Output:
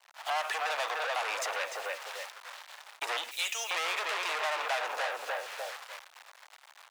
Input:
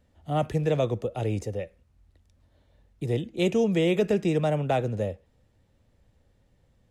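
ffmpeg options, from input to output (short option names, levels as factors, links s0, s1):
-filter_complex "[0:a]asplit=2[s0][s1];[s1]adelay=297,lowpass=f=2600:p=1,volume=0.376,asplit=2[s2][s3];[s3]adelay=297,lowpass=f=2600:p=1,volume=0.25,asplit=2[s4][s5];[s5]adelay=297,lowpass=f=2600:p=1,volume=0.25[s6];[s2][s4][s6]amix=inputs=3:normalize=0[s7];[s0][s7]amix=inputs=2:normalize=0,acrusher=bits=9:mix=0:aa=0.000001,asettb=1/sr,asplit=3[s8][s9][s10];[s8]atrim=end=3.314[s11];[s9]atrim=start=3.31:end=3.71,asetpts=PTS-STARTPTS,afade=t=in:d=0.004:c=qsin,afade=t=out:st=0.396:d=0.004:c=qsin,aderivative[s12];[s10]atrim=start=3.706[s13];[s11][s12]acrossfade=d=0.004:c1=hsin:c2=qsin[s14];[s14][s13]acrossfade=d=0.004:c1=qsin:c2=hsin,asplit=2[s15][s16];[s16]highpass=f=720:p=1,volume=50.1,asoftclip=type=tanh:threshold=0.266[s17];[s15][s17]amix=inputs=2:normalize=0,lowpass=f=3100:p=1,volume=0.501,agate=range=0.0224:threshold=0.0251:ratio=3:detection=peak,highpass=f=800:w=0.5412,highpass=f=800:w=1.3066,acompressor=threshold=0.0178:ratio=2"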